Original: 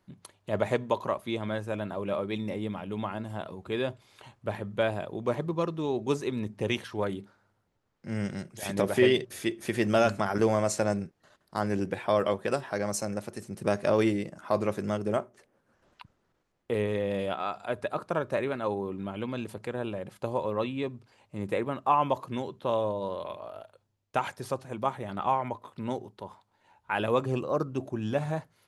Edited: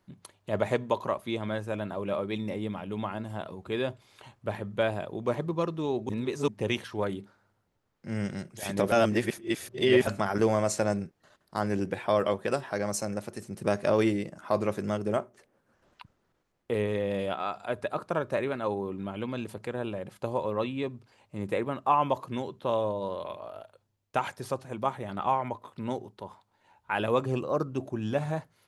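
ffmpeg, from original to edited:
ffmpeg -i in.wav -filter_complex "[0:a]asplit=5[link_01][link_02][link_03][link_04][link_05];[link_01]atrim=end=6.092[link_06];[link_02]atrim=start=6.088:end=6.482,asetpts=PTS-STARTPTS,areverse[link_07];[link_03]atrim=start=6.478:end=8.922[link_08];[link_04]atrim=start=8.918:end=10.072,asetpts=PTS-STARTPTS,areverse[link_09];[link_05]atrim=start=10.068[link_10];[link_06][link_07]acrossfade=duration=0.004:curve1=hsin:curve2=hsin[link_11];[link_11][link_08]acrossfade=duration=0.004:curve1=hsin:curve2=hsin[link_12];[link_12][link_09]acrossfade=duration=0.004:curve1=hsin:curve2=hsin[link_13];[link_13][link_10]acrossfade=duration=0.004:curve1=hsin:curve2=hsin" out.wav

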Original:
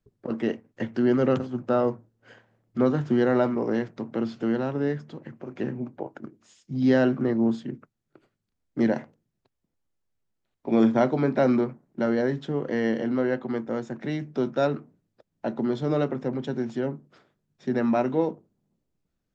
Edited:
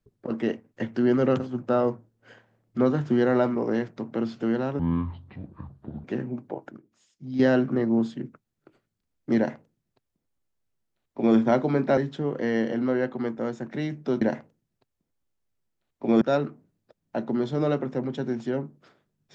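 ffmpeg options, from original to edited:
ffmpeg -i in.wav -filter_complex "[0:a]asplit=8[link_01][link_02][link_03][link_04][link_05][link_06][link_07][link_08];[link_01]atrim=end=4.794[link_09];[link_02]atrim=start=4.79:end=5.53,asetpts=PTS-STARTPTS,asetrate=26019,aresample=44100[link_10];[link_03]atrim=start=5.526:end=6.232[link_11];[link_04]atrim=start=6.228:end=6.882,asetpts=PTS-STARTPTS,volume=-8dB[link_12];[link_05]atrim=start=6.878:end=11.462[link_13];[link_06]atrim=start=12.268:end=14.512[link_14];[link_07]atrim=start=8.848:end=10.852[link_15];[link_08]atrim=start=14.508[link_16];[link_09][link_10]acrossfade=duration=0.004:curve1=hsin:curve2=hsin[link_17];[link_17][link_11]acrossfade=duration=0.004:curve1=hsin:curve2=hsin[link_18];[link_18][link_12]acrossfade=duration=0.004:curve1=hsin:curve2=hsin[link_19];[link_19][link_13]acrossfade=duration=0.004:curve1=hsin:curve2=hsin[link_20];[link_20][link_14]acrossfade=duration=0.004:curve1=hsin:curve2=hsin[link_21];[link_21][link_15]acrossfade=duration=0.004:curve1=hsin:curve2=hsin[link_22];[link_22][link_16]acrossfade=duration=0.004:curve1=hsin:curve2=hsin" out.wav

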